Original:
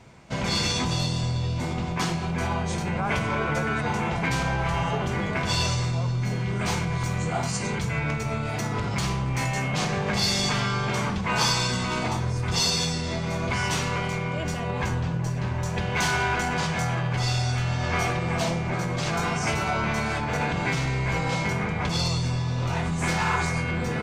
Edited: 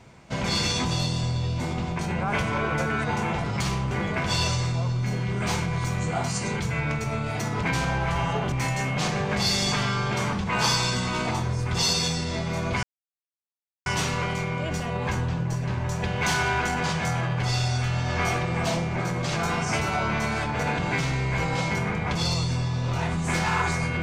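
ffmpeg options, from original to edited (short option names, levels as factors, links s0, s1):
-filter_complex "[0:a]asplit=7[s0][s1][s2][s3][s4][s5][s6];[s0]atrim=end=1.992[s7];[s1]atrim=start=2.758:end=4.212[s8];[s2]atrim=start=8.818:end=9.292[s9];[s3]atrim=start=5.098:end=8.822[s10];[s4]atrim=start=4.208:end=5.102[s11];[s5]atrim=start=9.288:end=13.6,asetpts=PTS-STARTPTS,afade=t=out:st=4.308:d=0.004:c=hsin,apad=pad_dur=1.03[s12];[s6]atrim=start=13.6,asetpts=PTS-STARTPTS,afade=t=in:d=0.004:c=hsin[s13];[s7][s8]acrossfade=d=0.004:c1=hsin:c2=hsin[s14];[s14][s9]acrossfade=d=0.004:c1=hsin:c2=hsin[s15];[s15][s10]acrossfade=d=0.004:c1=hsin:c2=hsin[s16];[s16][s11]acrossfade=d=0.004:c1=hsin:c2=hsin[s17];[s12][s13]concat=n=2:v=0:a=1[s18];[s17][s18]acrossfade=d=0.004:c1=hsin:c2=hsin"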